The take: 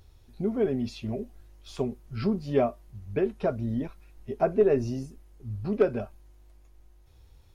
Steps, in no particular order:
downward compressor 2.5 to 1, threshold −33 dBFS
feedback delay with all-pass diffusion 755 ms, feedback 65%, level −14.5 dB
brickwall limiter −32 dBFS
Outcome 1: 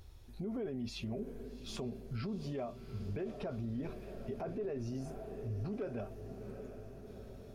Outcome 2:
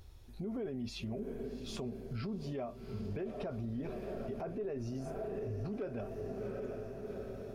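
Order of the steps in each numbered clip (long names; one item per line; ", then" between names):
downward compressor, then feedback delay with all-pass diffusion, then brickwall limiter
feedback delay with all-pass diffusion, then downward compressor, then brickwall limiter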